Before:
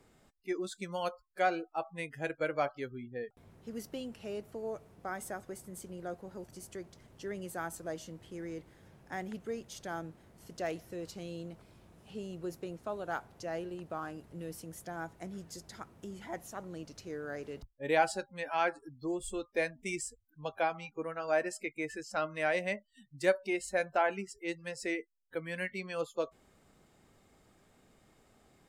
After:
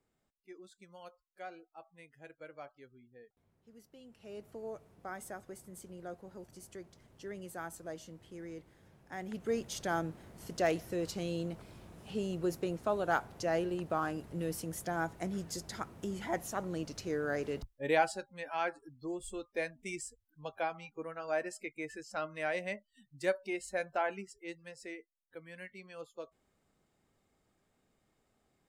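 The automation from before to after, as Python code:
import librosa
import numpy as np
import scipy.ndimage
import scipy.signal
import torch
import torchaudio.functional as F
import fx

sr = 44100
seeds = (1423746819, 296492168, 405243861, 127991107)

y = fx.gain(x, sr, db=fx.line((3.94, -16.5), (4.46, -4.0), (9.15, -4.0), (9.55, 6.0), (17.58, 6.0), (18.17, -4.0), (24.12, -4.0), (24.98, -11.0)))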